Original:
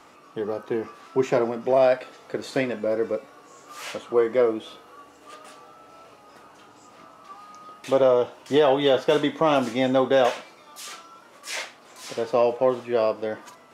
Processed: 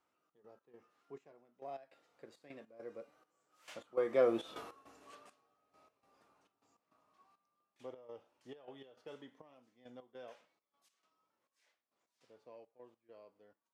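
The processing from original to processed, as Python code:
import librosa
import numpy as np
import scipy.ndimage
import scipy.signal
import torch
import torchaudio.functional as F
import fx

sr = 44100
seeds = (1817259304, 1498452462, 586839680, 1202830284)

y = fx.doppler_pass(x, sr, speed_mps=16, closest_m=1.2, pass_at_s=4.55)
y = fx.step_gate(y, sr, bpm=102, pattern='xx.x.xxx...x.x', floor_db=-12.0, edge_ms=4.5)
y = y * librosa.db_to_amplitude(4.5)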